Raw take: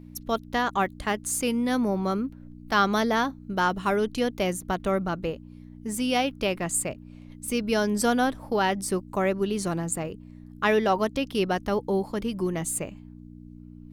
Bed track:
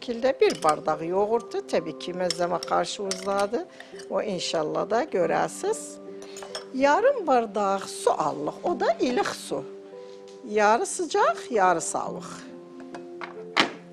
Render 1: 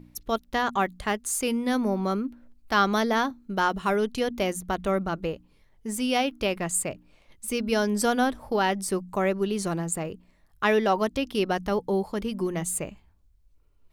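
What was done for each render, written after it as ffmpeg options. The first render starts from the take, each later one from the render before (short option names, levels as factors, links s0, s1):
-af "bandreject=f=60:t=h:w=4,bandreject=f=120:t=h:w=4,bandreject=f=180:t=h:w=4,bandreject=f=240:t=h:w=4,bandreject=f=300:t=h:w=4"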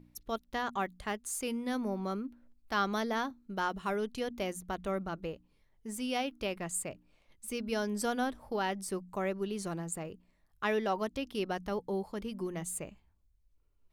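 -af "volume=0.355"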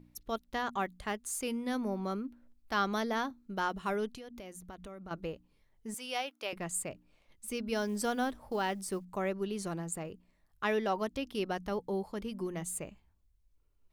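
-filter_complex "[0:a]asettb=1/sr,asplit=3[s0][s1][s2];[s0]atrim=end=4.124[s3];[s1]atrim=start=4.12:end=5.11,asetpts=PTS-STARTPTS,afade=t=in:d=0.004:c=qsin,afade=t=out:st=0.986:d=0.004:c=qsin,acompressor=threshold=0.00708:ratio=8:attack=3.2:release=140:knee=1:detection=peak[s4];[s2]atrim=start=5.106[s5];[s3][s4]acrossfade=d=0.004:c1=hsin:c2=qsin[s6];[s6][s5]acrossfade=d=0.004:c1=qsin:c2=hsin,asettb=1/sr,asplit=3[s7][s8][s9];[s7]atrim=end=5.944[s10];[s8]atrim=start=5.94:end=6.53,asetpts=PTS-STARTPTS,afade=t=in:d=0.004:c=qsin,afade=t=out:st=0.586:d=0.004:c=qsin,highpass=570[s11];[s9]atrim=start=6.526[s12];[s10][s11]acrossfade=d=0.004:c1=hsin:c2=qsin[s13];[s13][s12]acrossfade=d=0.004:c1=qsin:c2=hsin,asettb=1/sr,asplit=3[s14][s15][s16];[s14]atrim=end=7.754[s17];[s15]atrim=start=7.75:end=9.05,asetpts=PTS-STARTPTS,afade=t=in:d=0.004:c=qsin,afade=t=out:st=1.296:d=0.004:c=qsin,acrusher=bits=8:mode=log:mix=0:aa=0.000001[s18];[s16]atrim=start=9.046[s19];[s17][s18]acrossfade=d=0.004:c1=hsin:c2=qsin[s20];[s20][s19]acrossfade=d=0.004:c1=qsin:c2=hsin"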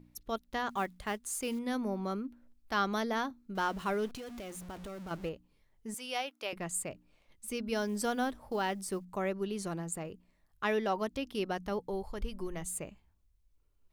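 -filter_complex "[0:a]asettb=1/sr,asplit=3[s0][s1][s2];[s0]atrim=end=0.694[s3];[s1]atrim=start=0.69:end=1.59,asetpts=PTS-STARTPTS,afade=t=in:d=0.004:c=qsin,afade=t=out:st=0.896:d=0.004:c=qsin,acrusher=bits=6:mode=log:mix=0:aa=0.000001[s4];[s2]atrim=start=1.586[s5];[s3][s4]acrossfade=d=0.004:c1=hsin:c2=qsin[s6];[s6][s5]acrossfade=d=0.004:c1=qsin:c2=hsin,asettb=1/sr,asplit=3[s7][s8][s9];[s7]atrim=end=3.554[s10];[s8]atrim=start=3.55:end=5.29,asetpts=PTS-STARTPTS,afade=t=in:d=0.004:c=qsin,afade=t=out:st=1.736:d=0.004:c=qsin,aeval=exprs='val(0)+0.5*0.00531*sgn(val(0))':c=same[s11];[s9]atrim=start=5.286[s12];[s10][s11]acrossfade=d=0.004:c1=hsin:c2=qsin[s13];[s13][s12]acrossfade=d=0.004:c1=qsin:c2=hsin,asplit=3[s14][s15][s16];[s14]afade=t=out:st=11.89:d=0.02[s17];[s15]asubboost=boost=11.5:cutoff=59,afade=t=in:st=11.89:d=0.02,afade=t=out:st=12.64:d=0.02[s18];[s16]afade=t=in:st=12.64:d=0.02[s19];[s17][s18][s19]amix=inputs=3:normalize=0"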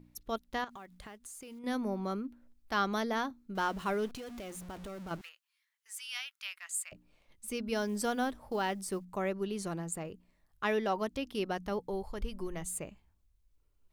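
-filter_complex "[0:a]asettb=1/sr,asplit=3[s0][s1][s2];[s0]atrim=end=0.644[s3];[s1]atrim=start=0.64:end=1.64,asetpts=PTS-STARTPTS,afade=t=in:d=0.004:c=qsin,afade=t=out:st=0.996:d=0.004:c=qsin,acompressor=threshold=0.00631:ratio=12:attack=3.2:release=140:knee=1:detection=peak[s4];[s2]atrim=start=1.636[s5];[s3][s4]acrossfade=d=0.004:c1=hsin:c2=qsin[s6];[s6][s5]acrossfade=d=0.004:c1=qsin:c2=hsin,asettb=1/sr,asplit=3[s7][s8][s9];[s7]atrim=end=5.214[s10];[s8]atrim=start=5.21:end=6.92,asetpts=PTS-STARTPTS,afade=t=in:d=0.004:c=qsin,afade=t=out:st=1.706:d=0.004:c=qsin,highpass=f=1400:w=0.5412,highpass=f=1400:w=1.3066[s11];[s9]atrim=start=6.916[s12];[s10][s11]acrossfade=d=0.004:c1=hsin:c2=qsin[s13];[s13][s12]acrossfade=d=0.004:c1=qsin:c2=hsin"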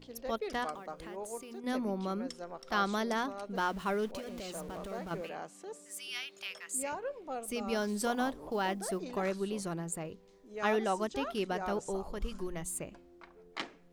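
-filter_complex "[1:a]volume=0.119[s0];[0:a][s0]amix=inputs=2:normalize=0"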